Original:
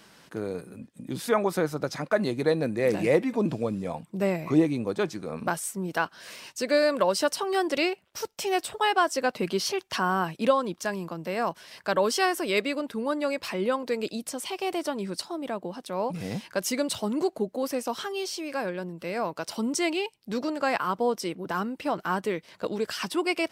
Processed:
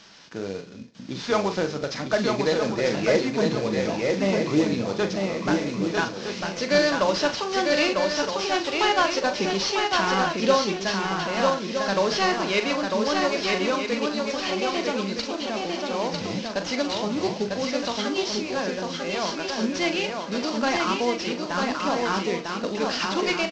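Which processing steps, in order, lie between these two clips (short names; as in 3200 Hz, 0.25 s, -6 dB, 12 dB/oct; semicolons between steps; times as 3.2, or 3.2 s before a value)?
CVSD 32 kbps; high shelf 2700 Hz +9 dB; doubler 41 ms -9 dB; swung echo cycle 1.265 s, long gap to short 3:1, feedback 35%, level -3.5 dB; on a send at -12.5 dB: reverb, pre-delay 3 ms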